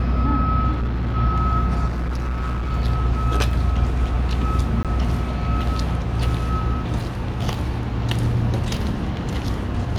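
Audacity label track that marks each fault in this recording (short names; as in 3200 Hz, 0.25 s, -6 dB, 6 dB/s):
0.710000	1.160000	clipped -19.5 dBFS
1.860000	2.730000	clipped -21 dBFS
3.510000	3.510000	gap 3.5 ms
4.830000	4.850000	gap 17 ms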